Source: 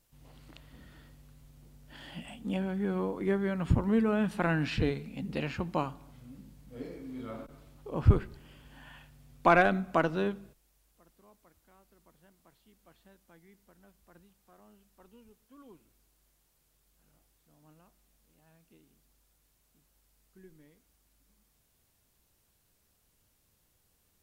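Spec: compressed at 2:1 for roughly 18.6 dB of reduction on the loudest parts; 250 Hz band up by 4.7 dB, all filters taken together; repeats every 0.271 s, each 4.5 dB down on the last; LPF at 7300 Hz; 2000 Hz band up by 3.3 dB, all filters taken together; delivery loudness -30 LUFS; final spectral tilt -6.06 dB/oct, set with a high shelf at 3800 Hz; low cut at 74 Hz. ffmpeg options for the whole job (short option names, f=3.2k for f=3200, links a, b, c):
-af "highpass=74,lowpass=7.3k,equalizer=f=250:t=o:g=6.5,equalizer=f=2k:t=o:g=5.5,highshelf=f=3.8k:g=-4,acompressor=threshold=-52dB:ratio=2,aecho=1:1:271|542|813|1084|1355|1626|1897|2168|2439:0.596|0.357|0.214|0.129|0.0772|0.0463|0.0278|0.0167|0.01,volume=14.5dB"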